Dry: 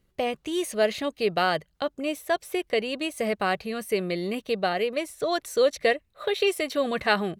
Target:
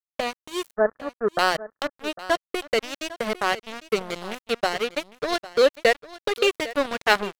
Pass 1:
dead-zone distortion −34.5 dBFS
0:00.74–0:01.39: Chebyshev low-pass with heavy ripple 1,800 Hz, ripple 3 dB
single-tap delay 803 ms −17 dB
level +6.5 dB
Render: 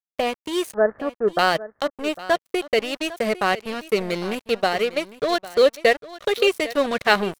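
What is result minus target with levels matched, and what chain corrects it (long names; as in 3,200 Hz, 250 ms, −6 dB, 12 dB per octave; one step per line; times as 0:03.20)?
dead-zone distortion: distortion −7 dB
dead-zone distortion −27 dBFS
0:00.74–0:01.39: Chebyshev low-pass with heavy ripple 1,800 Hz, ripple 3 dB
single-tap delay 803 ms −17 dB
level +6.5 dB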